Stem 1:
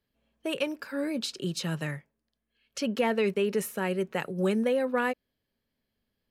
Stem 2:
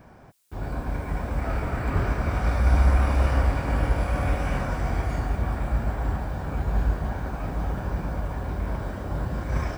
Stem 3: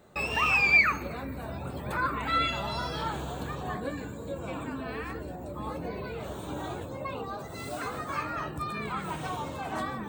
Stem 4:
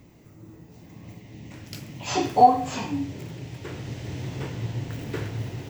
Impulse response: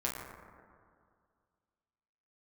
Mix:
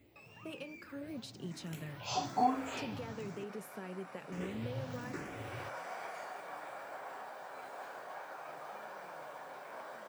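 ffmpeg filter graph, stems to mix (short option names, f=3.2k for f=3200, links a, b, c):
-filter_complex "[0:a]acompressor=threshold=-29dB:ratio=6,lowshelf=f=240:g=11.5,volume=-10dB,asplit=2[a][b];[1:a]highpass=f=510:w=0.5412,highpass=f=510:w=1.3066,adelay=1050,volume=-4.5dB[c];[2:a]acompressor=threshold=-33dB:ratio=6,highpass=f=130:w=0.5412,highpass=f=130:w=1.3066,volume=-17.5dB[d];[3:a]asplit=2[e][f];[f]afreqshift=1.1[g];[e][g]amix=inputs=2:normalize=1,volume=-2.5dB,asplit=3[h][i][j];[h]atrim=end=3.44,asetpts=PTS-STARTPTS,afade=t=out:st=3.436:d=0.004:c=hsin[k];[i]atrim=start=3.44:end=4.32,asetpts=PTS-STARTPTS,volume=0[l];[j]atrim=start=4.32,asetpts=PTS-STARTPTS,afade=t=in:d=0.004:c=hsin[m];[k][l][m]concat=n=3:v=0:a=1[n];[b]apad=whole_len=477431[o];[c][o]sidechaincompress=threshold=-46dB:ratio=8:attack=5.8:release=901[p];[a][p][d][n]amix=inputs=4:normalize=0,lowshelf=f=87:g=-11,flanger=delay=2.9:depth=8.7:regen=-76:speed=0.79:shape=sinusoidal"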